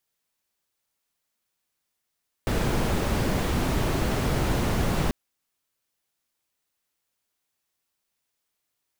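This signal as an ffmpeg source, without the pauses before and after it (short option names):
-f lavfi -i "anoisesrc=c=brown:a=0.295:d=2.64:r=44100:seed=1"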